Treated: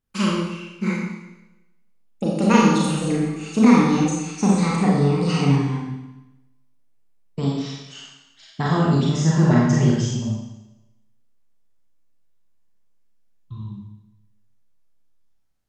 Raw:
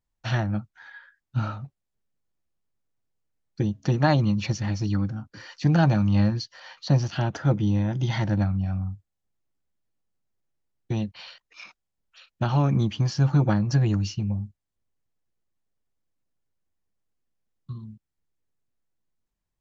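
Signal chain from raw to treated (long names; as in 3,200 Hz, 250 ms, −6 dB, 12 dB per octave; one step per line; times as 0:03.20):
gliding playback speed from 168% → 82%
four-comb reverb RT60 0.98 s, combs from 29 ms, DRR −4.5 dB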